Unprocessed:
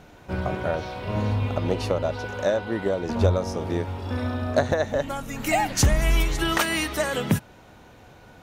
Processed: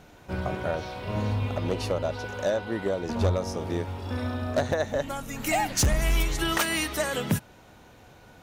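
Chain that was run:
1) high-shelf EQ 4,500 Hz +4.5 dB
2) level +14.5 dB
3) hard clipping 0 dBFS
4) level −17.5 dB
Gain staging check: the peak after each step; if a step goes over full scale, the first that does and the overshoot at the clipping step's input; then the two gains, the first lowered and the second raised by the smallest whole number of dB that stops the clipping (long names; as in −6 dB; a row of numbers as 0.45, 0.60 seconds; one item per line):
−7.5, +7.0, 0.0, −17.5 dBFS
step 2, 7.0 dB
step 2 +7.5 dB, step 4 −10.5 dB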